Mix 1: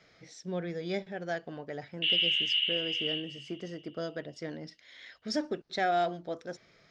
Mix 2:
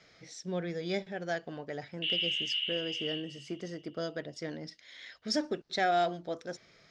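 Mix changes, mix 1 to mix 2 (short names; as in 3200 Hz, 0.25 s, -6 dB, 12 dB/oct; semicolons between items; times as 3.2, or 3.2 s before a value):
background -6.5 dB; master: add high shelf 4000 Hz +5.5 dB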